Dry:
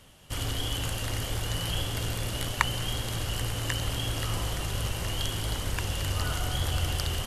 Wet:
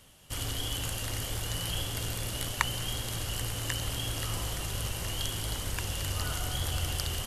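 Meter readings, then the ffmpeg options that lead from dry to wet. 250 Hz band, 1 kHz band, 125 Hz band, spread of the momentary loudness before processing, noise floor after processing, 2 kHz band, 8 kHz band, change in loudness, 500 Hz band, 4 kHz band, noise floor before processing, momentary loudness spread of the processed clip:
-4.0 dB, -3.5 dB, -4.0 dB, 3 LU, -38 dBFS, -3.0 dB, +1.0 dB, -2.5 dB, -4.0 dB, -2.0 dB, -35 dBFS, 3 LU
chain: -af "highshelf=f=4.8k:g=6.5,volume=-4dB"

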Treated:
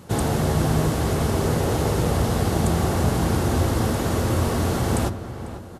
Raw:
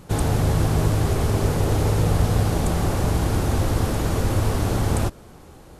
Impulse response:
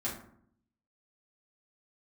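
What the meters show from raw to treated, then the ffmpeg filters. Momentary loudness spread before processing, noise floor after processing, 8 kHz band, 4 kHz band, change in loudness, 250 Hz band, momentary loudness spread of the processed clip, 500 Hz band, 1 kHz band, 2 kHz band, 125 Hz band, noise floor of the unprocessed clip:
3 LU, -36 dBFS, +1.5 dB, +1.5 dB, 0.0 dB, +2.0 dB, 2 LU, +2.0 dB, +1.5 dB, +1.5 dB, -1.5 dB, -45 dBFS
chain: -filter_complex "[0:a]highpass=77,bandreject=f=2.4k:w=20,asplit=2[a][b];[b]adelay=496,lowpass=f=2.6k:p=1,volume=-12dB,asplit=2[c][d];[d]adelay=496,lowpass=f=2.6k:p=1,volume=0.42,asplit=2[e][f];[f]adelay=496,lowpass=f=2.6k:p=1,volume=0.42,asplit=2[g][h];[h]adelay=496,lowpass=f=2.6k:p=1,volume=0.42[i];[a][c][e][g][i]amix=inputs=5:normalize=0,asplit=2[j][k];[1:a]atrim=start_sample=2205[l];[k][l]afir=irnorm=-1:irlink=0,volume=-13dB[m];[j][m]amix=inputs=2:normalize=0"

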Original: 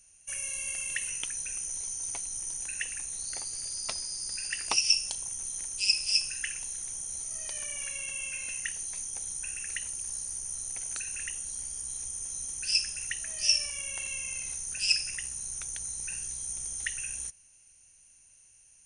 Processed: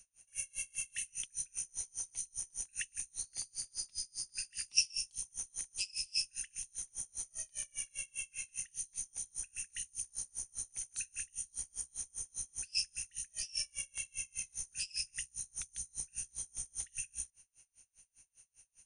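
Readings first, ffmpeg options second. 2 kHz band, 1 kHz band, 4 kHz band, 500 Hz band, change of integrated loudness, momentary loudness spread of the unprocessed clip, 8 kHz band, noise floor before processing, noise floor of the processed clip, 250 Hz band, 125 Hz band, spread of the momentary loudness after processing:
-11.5 dB, under -20 dB, -10.0 dB, under -15 dB, -8.0 dB, 9 LU, -7.0 dB, -59 dBFS, -75 dBFS, n/a, -7.0 dB, 6 LU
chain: -filter_complex "[0:a]acrossover=split=250|2100[a][b][c];[b]acompressor=threshold=-60dB:ratio=6[d];[a][d][c]amix=inputs=3:normalize=0,aeval=exprs='val(0)*pow(10,-34*(0.5-0.5*cos(2*PI*5*n/s))/20)':c=same"

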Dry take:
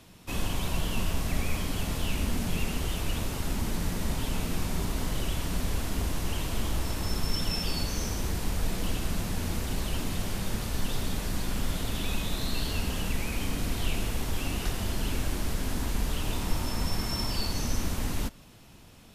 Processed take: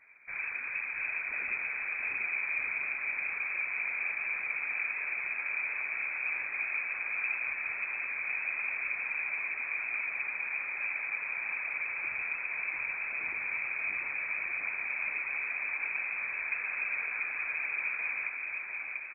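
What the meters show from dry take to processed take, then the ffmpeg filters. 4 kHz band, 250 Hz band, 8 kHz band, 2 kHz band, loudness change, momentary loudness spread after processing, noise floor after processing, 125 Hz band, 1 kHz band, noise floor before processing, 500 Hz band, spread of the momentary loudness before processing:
under -40 dB, under -25 dB, under -40 dB, +11.0 dB, 0.0 dB, 2 LU, -40 dBFS, under -35 dB, -6.5 dB, -51 dBFS, -16.5 dB, 2 LU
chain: -filter_complex "[0:a]lowshelf=f=220:g=10.5,afftfilt=real='hypot(re,im)*cos(2*PI*random(0))':imag='hypot(re,im)*sin(2*PI*random(1))':win_size=512:overlap=0.75,acrossover=split=210 2000:gain=0.0794 1 0.158[a][b][c];[a][b][c]amix=inputs=3:normalize=0,aecho=1:1:690|1173|1511|1748|1913:0.631|0.398|0.251|0.158|0.1,lowpass=f=2.2k:t=q:w=0.5098,lowpass=f=2.2k:t=q:w=0.6013,lowpass=f=2.2k:t=q:w=0.9,lowpass=f=2.2k:t=q:w=2.563,afreqshift=-2600,volume=2.5dB"

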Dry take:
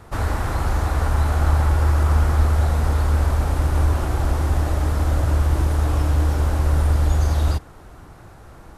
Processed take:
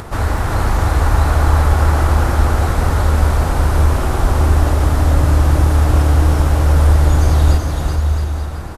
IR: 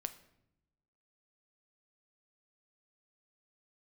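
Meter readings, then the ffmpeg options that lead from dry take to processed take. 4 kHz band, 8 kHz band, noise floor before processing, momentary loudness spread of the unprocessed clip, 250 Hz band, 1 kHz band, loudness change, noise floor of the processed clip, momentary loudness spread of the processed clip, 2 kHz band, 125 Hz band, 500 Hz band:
+7.0 dB, +7.0 dB, -44 dBFS, 4 LU, +7.0 dB, +7.5 dB, +5.5 dB, -21 dBFS, 5 LU, +7.0 dB, +5.5 dB, +7.0 dB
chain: -filter_complex "[0:a]acompressor=mode=upward:threshold=-28dB:ratio=2.5,asplit=2[a][b];[b]aecho=0:1:380|665|878.8|1039|1159:0.631|0.398|0.251|0.158|0.1[c];[a][c]amix=inputs=2:normalize=0,volume=5dB"

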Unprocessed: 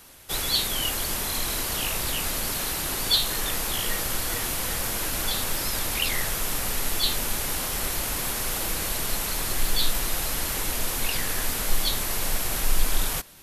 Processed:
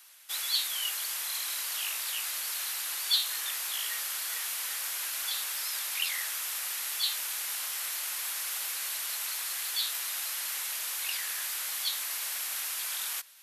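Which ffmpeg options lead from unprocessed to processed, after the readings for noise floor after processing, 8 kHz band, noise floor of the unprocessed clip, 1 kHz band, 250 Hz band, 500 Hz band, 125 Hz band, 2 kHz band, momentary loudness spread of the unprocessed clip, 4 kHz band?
-36 dBFS, -4.5 dB, -29 dBFS, -11.0 dB, under -30 dB, -21.0 dB, under -40 dB, -5.5 dB, 3 LU, -4.5 dB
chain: -af "aeval=exprs='0.398*(cos(1*acos(clip(val(0)/0.398,-1,1)))-cos(1*PI/2))+0.00316*(cos(4*acos(clip(val(0)/0.398,-1,1)))-cos(4*PI/2))':c=same,highpass=1.4k,volume=-4.5dB"

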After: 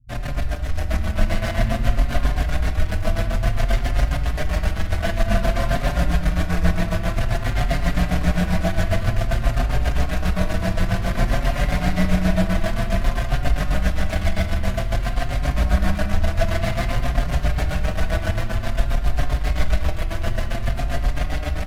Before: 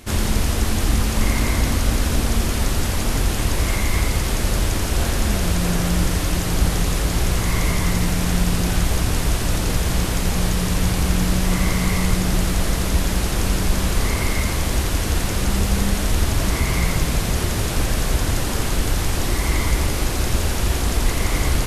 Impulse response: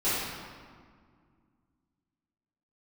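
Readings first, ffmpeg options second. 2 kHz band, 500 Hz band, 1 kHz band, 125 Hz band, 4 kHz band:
-1.5 dB, +0.5 dB, -1.0 dB, -1.0 dB, -7.0 dB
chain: -filter_complex "[0:a]firequalizer=gain_entry='entry(190,0);entry(460,-12);entry(660,13);entry(990,-28);entry(1500,4);entry(2500,-9);entry(8600,-18);entry(13000,-15)':delay=0.05:min_phase=1,tremolo=f=7.5:d=0.57,acrossover=split=130[a][b];[b]acrusher=bits=3:mix=0:aa=0.5[c];[a][c]amix=inputs=2:normalize=0,dynaudnorm=f=190:g=9:m=4dB,aecho=1:1:947:0.299,asplit=2[d][e];[1:a]atrim=start_sample=2205[f];[e][f]afir=irnorm=-1:irlink=0,volume=-17.5dB[g];[d][g]amix=inputs=2:normalize=0,asplit=2[h][i];[i]adelay=5.3,afreqshift=0.53[j];[h][j]amix=inputs=2:normalize=1"

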